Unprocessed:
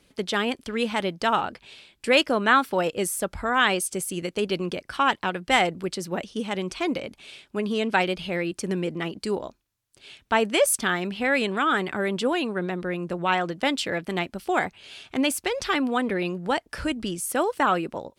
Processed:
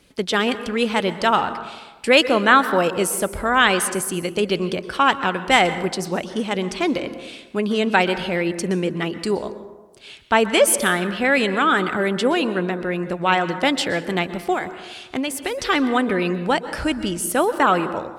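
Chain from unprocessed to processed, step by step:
0:14.53–0:15.65: downward compressor 4 to 1, threshold −27 dBFS, peak gain reduction 8 dB
dense smooth reverb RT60 1.2 s, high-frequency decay 0.4×, pre-delay 110 ms, DRR 12 dB
level +5 dB

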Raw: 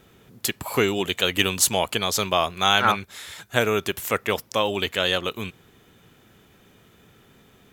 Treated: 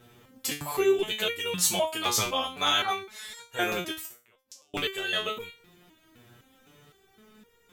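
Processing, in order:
in parallel at +2 dB: brickwall limiter −11 dBFS, peak gain reduction 10 dB
0:03.99–0:04.74: on the sum: gate with flip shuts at −12 dBFS, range −39 dB
regular buffer underruns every 0.21 s, samples 64, repeat, from 0:00.36
step-sequenced resonator 3.9 Hz 120–470 Hz
level +2.5 dB

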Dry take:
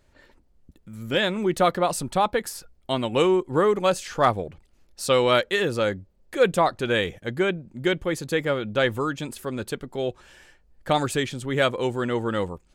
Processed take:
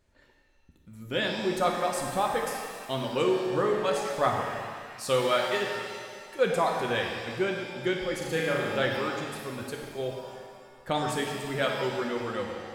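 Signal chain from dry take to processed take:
reverb reduction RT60 1.8 s
0:05.64–0:06.39: downward compressor, threshold −39 dBFS, peak gain reduction 17.5 dB
0:08.18–0:08.85: flutter between parallel walls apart 6.3 metres, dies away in 0.84 s
reverb with rising layers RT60 1.9 s, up +7 semitones, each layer −8 dB, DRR 0.5 dB
level −7 dB

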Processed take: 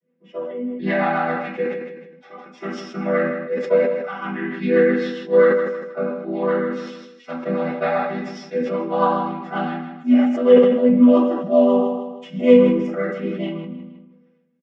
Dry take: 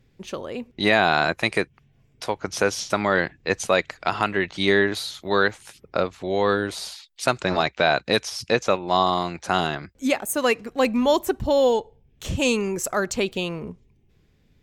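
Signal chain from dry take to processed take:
channel vocoder with a chord as carrier minor triad, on E3
harmonic and percussive parts rebalanced percussive −13 dB
comb filter 3.7 ms, depth 47%
rotating-speaker cabinet horn 7.5 Hz
noise reduction from a noise print of the clip's start 9 dB
repeating echo 157 ms, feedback 29%, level −12 dB
convolution reverb RT60 0.35 s, pre-delay 3 ms, DRR −13 dB
level that may fall only so fast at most 49 dB per second
level −9.5 dB

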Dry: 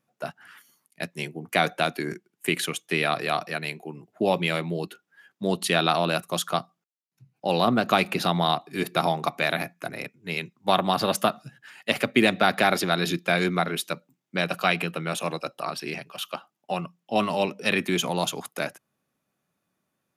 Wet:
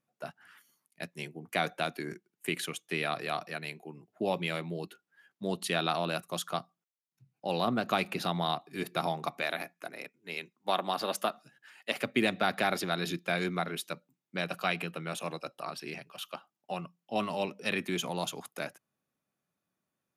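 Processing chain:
0:09.41–0:12.02: high-pass filter 270 Hz 12 dB per octave
level −8 dB

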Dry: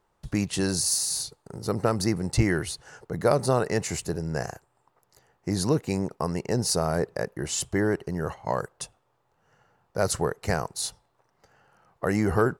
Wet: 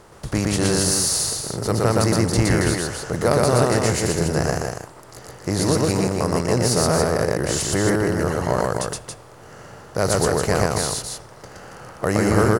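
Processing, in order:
compressor on every frequency bin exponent 0.6
loudspeakers that aren't time-aligned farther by 41 metres −1 dB, 95 metres −5 dB

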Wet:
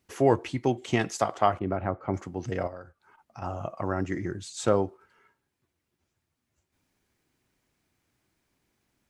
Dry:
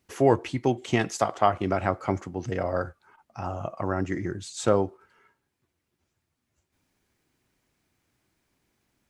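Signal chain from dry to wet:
0:01.59–0:02.14: head-to-tape spacing loss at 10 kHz 40 dB
0:02.67–0:03.42: downward compressor 6 to 1, threshold −38 dBFS, peak gain reduction 15 dB
level −1.5 dB

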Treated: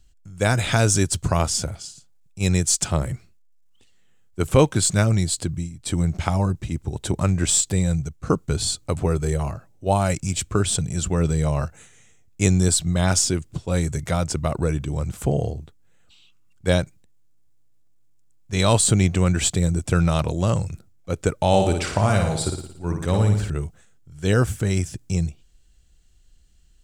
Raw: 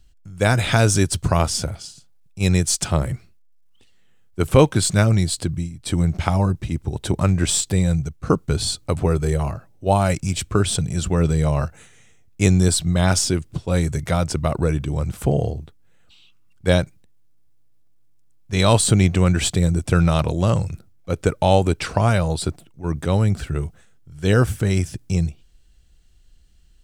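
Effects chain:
parametric band 7,200 Hz +6 dB 0.47 octaves
0:21.47–0:23.50: flutter between parallel walls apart 9.8 metres, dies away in 0.66 s
level −2.5 dB

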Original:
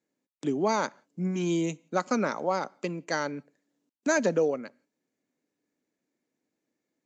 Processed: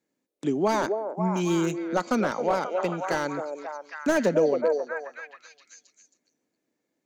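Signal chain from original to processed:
0:01.34–0:01.86: high-shelf EQ 6,800 Hz +6.5 dB
echo through a band-pass that steps 269 ms, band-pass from 510 Hz, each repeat 0.7 octaves, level −2 dB
slew-rate limiting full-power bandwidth 84 Hz
level +2.5 dB

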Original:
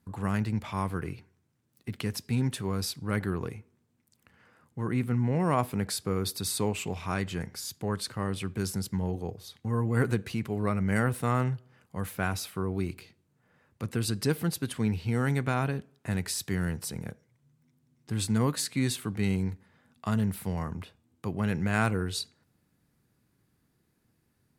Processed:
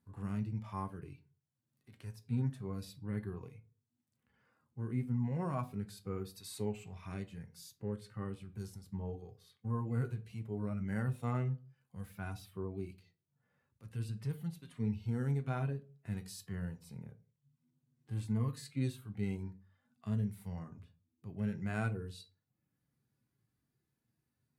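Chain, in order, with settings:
reverb reduction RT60 0.59 s
harmonic and percussive parts rebalanced percussive −18 dB
on a send: convolution reverb RT60 0.35 s, pre-delay 7 ms, DRR 7 dB
on the sum: level −7 dB

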